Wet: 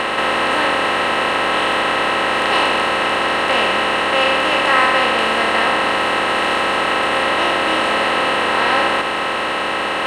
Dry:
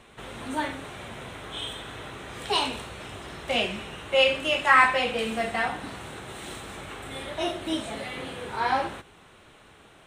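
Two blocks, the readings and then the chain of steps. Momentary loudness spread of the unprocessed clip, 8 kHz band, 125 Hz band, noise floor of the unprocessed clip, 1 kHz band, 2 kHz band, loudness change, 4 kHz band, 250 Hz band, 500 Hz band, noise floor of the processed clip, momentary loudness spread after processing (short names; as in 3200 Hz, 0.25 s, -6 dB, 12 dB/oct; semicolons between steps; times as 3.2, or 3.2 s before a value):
18 LU, +10.0 dB, +6.0 dB, -54 dBFS, +12.5 dB, +12.5 dB, +10.5 dB, +11.5 dB, +10.0 dB, +11.0 dB, -20 dBFS, 3 LU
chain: per-bin compression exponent 0.2; gain -1.5 dB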